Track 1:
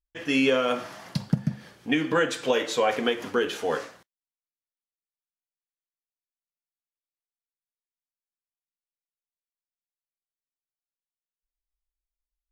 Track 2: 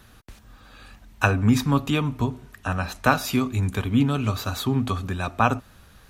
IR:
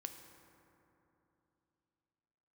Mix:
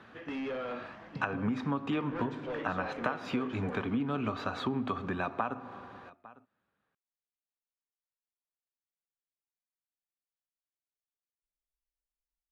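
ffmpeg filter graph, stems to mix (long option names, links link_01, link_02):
-filter_complex "[0:a]asoftclip=type=tanh:threshold=-25.5dB,volume=-7dB,asplit=2[link_01][link_02];[link_02]volume=-12dB[link_03];[1:a]highpass=220,acompressor=threshold=-24dB:ratio=6,volume=0dB,asplit=3[link_04][link_05][link_06];[link_05]volume=-4dB[link_07];[link_06]volume=-24dB[link_08];[2:a]atrim=start_sample=2205[link_09];[link_07][link_09]afir=irnorm=-1:irlink=0[link_10];[link_03][link_08]amix=inputs=2:normalize=0,aecho=0:1:853:1[link_11];[link_01][link_04][link_10][link_11]amix=inputs=4:normalize=0,lowpass=2100,acompressor=threshold=-33dB:ratio=2"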